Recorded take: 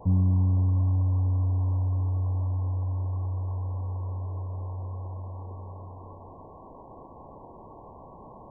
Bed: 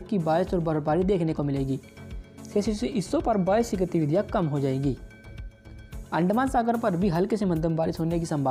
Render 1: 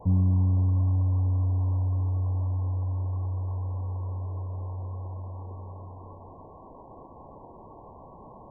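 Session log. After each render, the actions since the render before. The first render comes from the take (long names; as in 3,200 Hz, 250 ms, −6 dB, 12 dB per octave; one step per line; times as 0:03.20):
broadband denoise 6 dB, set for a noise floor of −48 dBFS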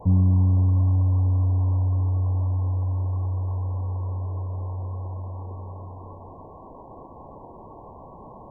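level +4 dB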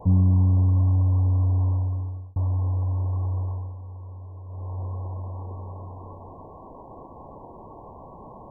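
0:01.65–0:02.36: fade out
0:03.40–0:04.80: duck −10.5 dB, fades 0.36 s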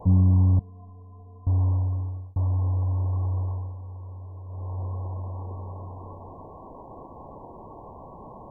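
0:00.59–0:01.47: stiff-string resonator 210 Hz, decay 0.35 s, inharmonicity 0.03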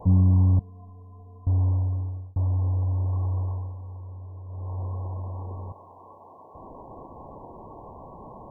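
0:01.45–0:03.09: low-pass filter 1,000 Hz
0:04.00–0:04.67: high-frequency loss of the air 450 metres
0:05.72–0:06.55: high-pass filter 880 Hz 6 dB per octave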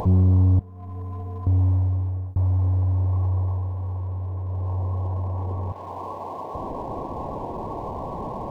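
upward compression, threshold −25 dBFS
leveller curve on the samples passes 1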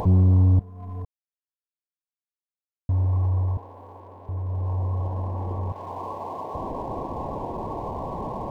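0:01.05–0:02.89: silence
0:03.57–0:04.29: high-pass filter 320 Hz
0:04.94–0:05.58: flutter between parallel walls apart 11.7 metres, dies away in 0.69 s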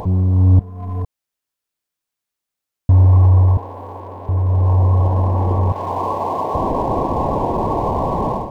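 automatic gain control gain up to 12.5 dB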